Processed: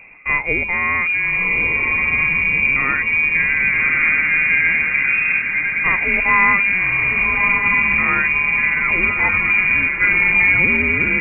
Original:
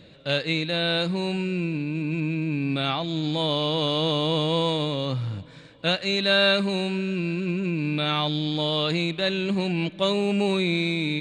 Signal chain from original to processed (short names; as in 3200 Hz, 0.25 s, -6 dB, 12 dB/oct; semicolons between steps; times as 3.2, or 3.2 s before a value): inverted band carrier 2600 Hz; diffused feedback echo 1.177 s, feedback 51%, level -4 dB; gain +7.5 dB